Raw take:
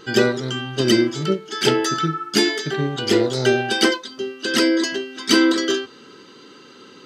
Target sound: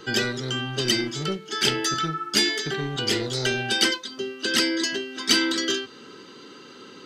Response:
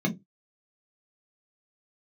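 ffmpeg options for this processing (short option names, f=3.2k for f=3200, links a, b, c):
-filter_complex "[0:a]acrossover=split=220|1600[a][b][c];[a]volume=32dB,asoftclip=hard,volume=-32dB[d];[b]acompressor=threshold=-30dB:ratio=4[e];[d][e][c]amix=inputs=3:normalize=0"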